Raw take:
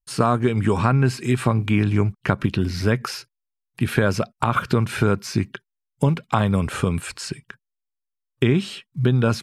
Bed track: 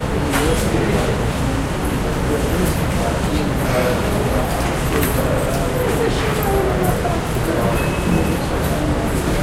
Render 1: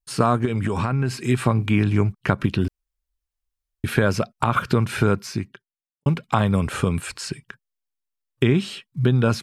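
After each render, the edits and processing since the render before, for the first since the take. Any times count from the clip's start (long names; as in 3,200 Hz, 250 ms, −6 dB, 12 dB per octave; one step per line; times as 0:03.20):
0:00.45–0:01.24: downward compressor, threshold −18 dBFS
0:02.68–0:03.84: fill with room tone
0:05.16–0:06.06: fade out quadratic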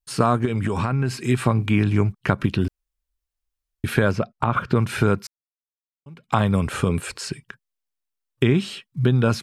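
0:04.11–0:04.76: low-pass filter 1,900 Hz 6 dB per octave
0:05.27–0:06.34: fade in exponential
0:06.89–0:07.29: parametric band 450 Hz +8 dB 0.88 octaves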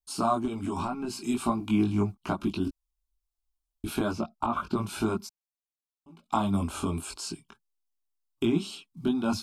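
phaser with its sweep stopped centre 490 Hz, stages 6
multi-voice chorus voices 4, 0.36 Hz, delay 21 ms, depth 3.8 ms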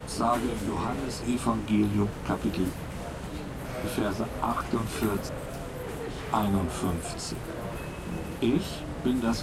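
mix in bed track −18 dB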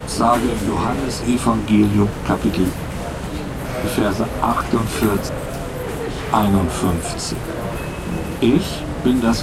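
level +10.5 dB
brickwall limiter −2 dBFS, peak gain reduction 1 dB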